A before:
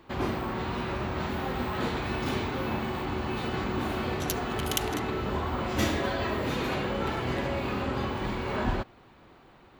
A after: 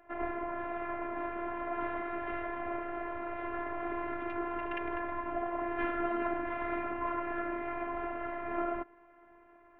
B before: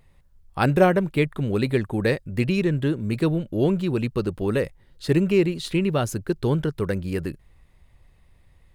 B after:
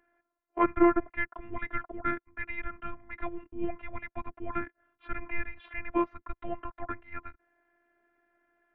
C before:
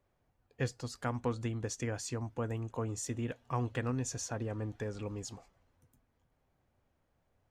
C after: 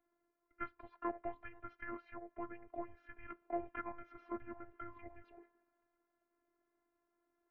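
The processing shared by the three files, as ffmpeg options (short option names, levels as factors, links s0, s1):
-af "highpass=f=500:t=q:w=0.5412,highpass=f=500:t=q:w=1.307,lowpass=f=2400:t=q:w=0.5176,lowpass=f=2400:t=q:w=0.7071,lowpass=f=2400:t=q:w=1.932,afreqshift=-330,afftfilt=real='hypot(re,im)*cos(PI*b)':imag='0':win_size=512:overlap=0.75,volume=1.41"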